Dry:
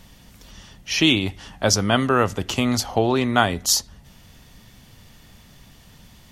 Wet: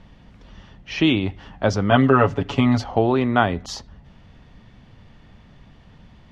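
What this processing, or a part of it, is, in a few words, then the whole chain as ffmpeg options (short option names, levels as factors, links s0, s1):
phone in a pocket: -filter_complex "[0:a]lowpass=3600,highshelf=f=2400:g=-9,asettb=1/sr,asplit=3[s0][s1][s2];[s0]atrim=end=1.904[s3];[s1]atrim=start=1.9:end=2.84,asetpts=PTS-STARTPTS,afade=t=in:d=0.004:c=qsin,afade=t=out:st=0.936:d=0.004:c=qsin,aecho=1:1:7.1:0.92,atrim=end_sample=41454[s4];[s2]atrim=start=2.836[s5];[s3][s4]acrossfade=d=0.004:c1=hsin:c2=qsin[s6];[s6][s5]acrossfade=d=0.004:c1=qsin:c2=hsin,volume=1.19"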